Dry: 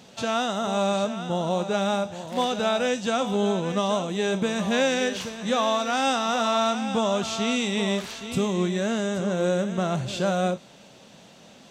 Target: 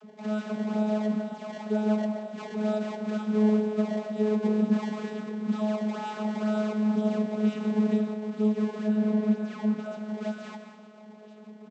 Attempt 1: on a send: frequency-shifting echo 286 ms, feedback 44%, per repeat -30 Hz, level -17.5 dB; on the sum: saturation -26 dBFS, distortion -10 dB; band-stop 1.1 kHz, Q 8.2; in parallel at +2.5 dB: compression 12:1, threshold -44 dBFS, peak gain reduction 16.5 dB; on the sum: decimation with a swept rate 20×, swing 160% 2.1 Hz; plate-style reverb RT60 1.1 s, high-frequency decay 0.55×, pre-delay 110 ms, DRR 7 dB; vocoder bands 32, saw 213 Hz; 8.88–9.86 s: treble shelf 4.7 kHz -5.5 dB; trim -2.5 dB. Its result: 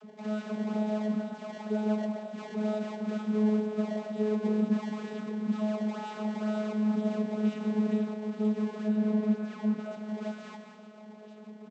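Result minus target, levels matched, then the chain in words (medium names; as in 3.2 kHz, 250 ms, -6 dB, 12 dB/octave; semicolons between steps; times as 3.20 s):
saturation: distortion +10 dB
on a send: frequency-shifting echo 286 ms, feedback 44%, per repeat -30 Hz, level -17.5 dB; on the sum: saturation -17 dBFS, distortion -20 dB; band-stop 1.1 kHz, Q 8.2; in parallel at +2.5 dB: compression 12:1, threshold -44 dBFS, peak gain reduction 22 dB; on the sum: decimation with a swept rate 20×, swing 160% 2.1 Hz; plate-style reverb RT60 1.1 s, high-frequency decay 0.55×, pre-delay 110 ms, DRR 7 dB; vocoder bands 32, saw 213 Hz; 8.88–9.86 s: treble shelf 4.7 kHz -5.5 dB; trim -2.5 dB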